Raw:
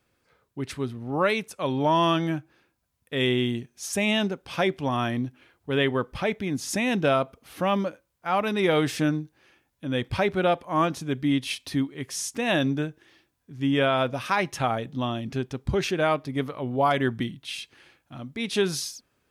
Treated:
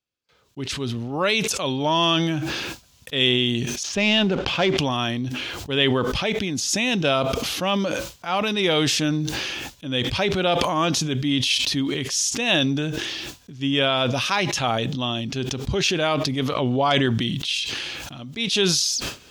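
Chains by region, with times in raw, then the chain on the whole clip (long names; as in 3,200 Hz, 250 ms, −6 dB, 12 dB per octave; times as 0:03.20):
0:03.83–0:04.78: low-pass filter 2,700 Hz + leveller curve on the samples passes 1
0:16.55–0:17.06: Butterworth low-pass 9,400 Hz 72 dB per octave + envelope flattener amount 70%
whole clip: noise gate with hold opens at −56 dBFS; flat-topped bell 4,400 Hz +10 dB; level that may fall only so fast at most 21 dB per second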